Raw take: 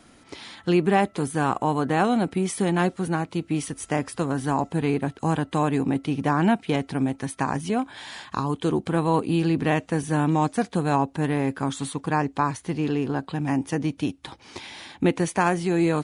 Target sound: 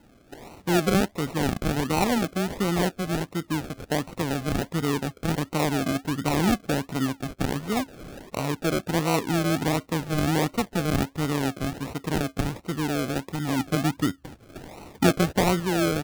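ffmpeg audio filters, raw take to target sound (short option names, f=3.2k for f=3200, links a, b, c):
-filter_complex "[0:a]asettb=1/sr,asplit=3[a][b][c];[a]atrim=end=13.594[d];[b]atrim=start=13.59:end=15.6,asetpts=PTS-STARTPTS,afade=t=in:d=0.004:c=qsin,afade=t=out:st=2.006:d=0.004:c=qsin,lowshelf=f=390:g=5.5[e];[c]atrim=start=15.596[f];[d][e]acrossfade=d=0.004:c1=hsin:c2=qsin[g];[g][f]acrossfade=d=0.004:c1=qsin:c2=hsin,acrusher=samples=37:mix=1:aa=0.000001:lfo=1:lforange=22.2:lforate=1.4,volume=-2dB"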